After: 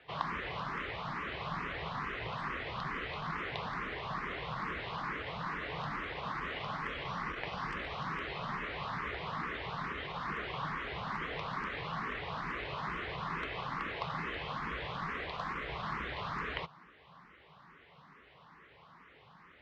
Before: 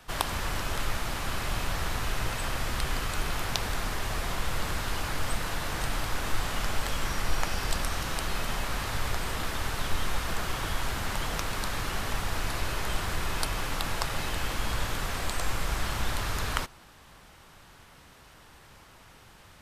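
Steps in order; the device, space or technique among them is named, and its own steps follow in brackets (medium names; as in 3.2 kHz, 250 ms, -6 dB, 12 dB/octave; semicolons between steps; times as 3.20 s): barber-pole phaser into a guitar amplifier (barber-pole phaser +2.3 Hz; saturation -19.5 dBFS, distortion -24 dB; cabinet simulation 87–3700 Hz, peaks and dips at 94 Hz -9 dB, 160 Hz +7 dB, 430 Hz +5 dB, 1.1 kHz +8 dB, 2 kHz +6 dB); trim -4 dB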